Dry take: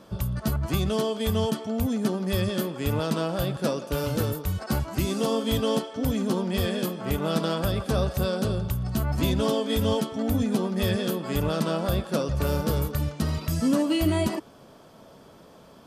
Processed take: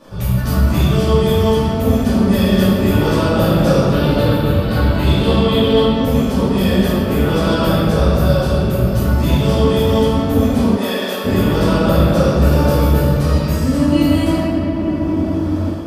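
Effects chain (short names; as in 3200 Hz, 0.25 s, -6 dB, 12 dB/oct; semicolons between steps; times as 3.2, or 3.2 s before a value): 3.9–5.95 resonant high shelf 4800 Hz -6.5 dB, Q 3; reverb RT60 3.2 s, pre-delay 3 ms, DRR -15 dB; AGC; 10.76–11.24 HPF 290 Hz -> 610 Hz 12 dB/oct; gain -1 dB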